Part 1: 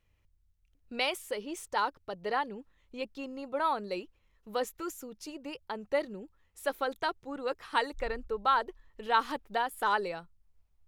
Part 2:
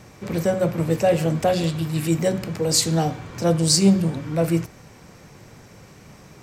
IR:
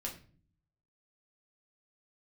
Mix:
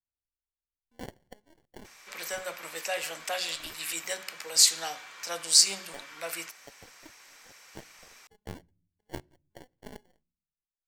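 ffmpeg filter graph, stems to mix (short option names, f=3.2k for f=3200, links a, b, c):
-filter_complex "[0:a]bass=f=250:g=1,treble=f=4k:g=4,acrusher=samples=35:mix=1:aa=0.000001,aeval=exprs='0.211*(cos(1*acos(clip(val(0)/0.211,-1,1)))-cos(1*PI/2))+0.0473*(cos(2*acos(clip(val(0)/0.211,-1,1)))-cos(2*PI/2))+0.0531*(cos(3*acos(clip(val(0)/0.211,-1,1)))-cos(3*PI/2))+0.00266*(cos(5*acos(clip(val(0)/0.211,-1,1)))-cos(5*PI/2))+0.00841*(cos(7*acos(clip(val(0)/0.211,-1,1)))-cos(7*PI/2))':c=same,volume=-2.5dB,afade=t=out:st=1.5:d=0.35:silence=0.316228,asplit=2[a][b];[b]volume=-21.5dB[c];[1:a]highpass=1.5k,adelay=1850,volume=0.5dB[d];[2:a]atrim=start_sample=2205[e];[c][e]afir=irnorm=-1:irlink=0[f];[a][d][f]amix=inputs=3:normalize=0"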